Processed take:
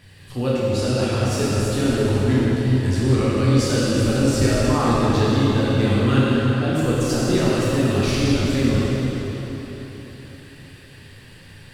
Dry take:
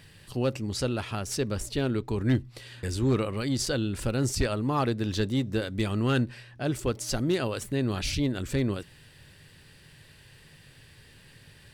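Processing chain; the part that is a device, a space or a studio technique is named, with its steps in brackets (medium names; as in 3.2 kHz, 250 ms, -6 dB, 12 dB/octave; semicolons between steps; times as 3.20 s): swimming-pool hall (reverberation RT60 4.0 s, pre-delay 5 ms, DRR -8.5 dB; treble shelf 5.8 kHz -4 dB)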